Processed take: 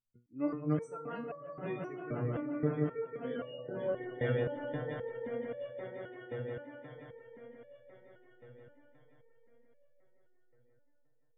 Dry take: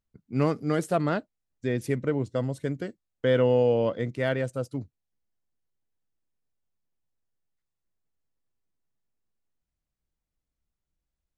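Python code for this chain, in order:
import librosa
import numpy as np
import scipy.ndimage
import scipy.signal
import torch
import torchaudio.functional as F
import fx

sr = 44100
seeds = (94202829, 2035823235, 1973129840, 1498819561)

y = scipy.signal.sosfilt(scipy.signal.butter(2, 8800.0, 'lowpass', fs=sr, output='sos'), x)
y = fx.echo_swell(y, sr, ms=175, loudest=5, wet_db=-7.0)
y = fx.spec_gate(y, sr, threshold_db=-30, keep='strong')
y = fx.resonator_held(y, sr, hz=3.8, low_hz=120.0, high_hz=570.0)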